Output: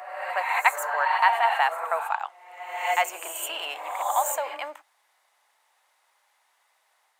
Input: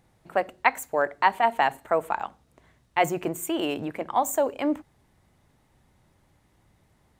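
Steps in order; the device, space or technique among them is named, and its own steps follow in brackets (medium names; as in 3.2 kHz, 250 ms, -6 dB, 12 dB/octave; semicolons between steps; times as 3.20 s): ghost voice (reverse; reverberation RT60 1.2 s, pre-delay 73 ms, DRR 2 dB; reverse; high-pass 770 Hz 24 dB/octave); trim +1.5 dB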